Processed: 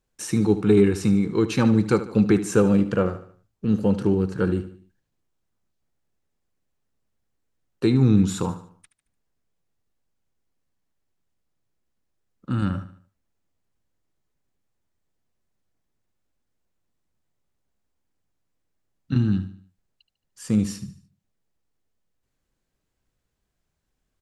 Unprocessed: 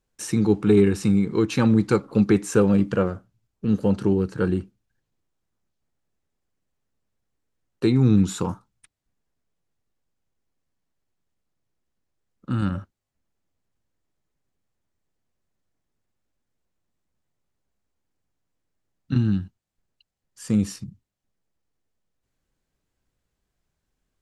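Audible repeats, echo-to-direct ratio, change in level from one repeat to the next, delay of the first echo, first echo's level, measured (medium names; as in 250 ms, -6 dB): 3, -12.5 dB, -7.5 dB, 74 ms, -13.5 dB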